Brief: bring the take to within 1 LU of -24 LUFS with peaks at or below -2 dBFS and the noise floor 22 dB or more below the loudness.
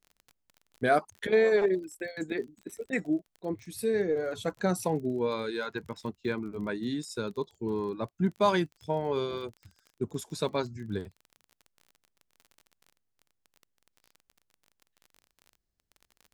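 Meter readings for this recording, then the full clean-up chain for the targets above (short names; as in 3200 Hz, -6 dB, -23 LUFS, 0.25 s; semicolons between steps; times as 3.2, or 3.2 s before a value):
ticks 29/s; loudness -31.0 LUFS; peak -12.0 dBFS; loudness target -24.0 LUFS
-> de-click; gain +7 dB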